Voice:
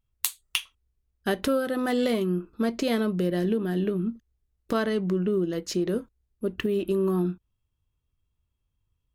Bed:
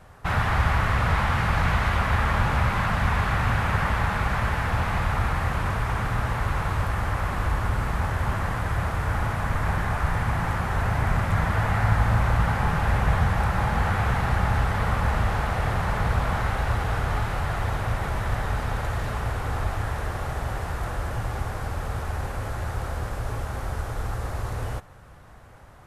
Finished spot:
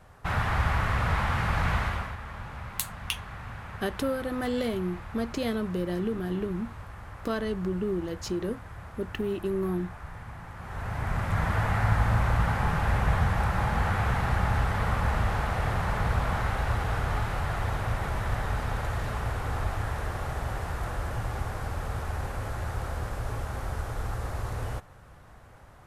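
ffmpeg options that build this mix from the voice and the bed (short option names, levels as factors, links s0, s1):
-filter_complex "[0:a]adelay=2550,volume=0.596[s0];[1:a]volume=3.16,afade=t=out:st=1.77:d=0.39:silence=0.223872,afade=t=in:st=10.54:d=0.96:silence=0.199526[s1];[s0][s1]amix=inputs=2:normalize=0"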